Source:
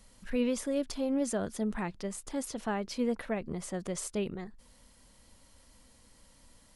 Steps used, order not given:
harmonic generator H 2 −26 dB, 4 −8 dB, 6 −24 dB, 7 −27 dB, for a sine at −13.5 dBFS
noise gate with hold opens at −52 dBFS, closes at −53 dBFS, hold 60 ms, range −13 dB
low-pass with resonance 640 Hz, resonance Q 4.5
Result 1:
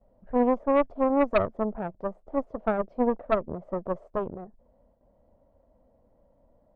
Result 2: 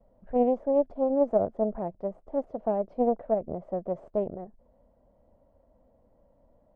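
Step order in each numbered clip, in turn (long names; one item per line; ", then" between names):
low-pass with resonance, then noise gate with hold, then harmonic generator
noise gate with hold, then harmonic generator, then low-pass with resonance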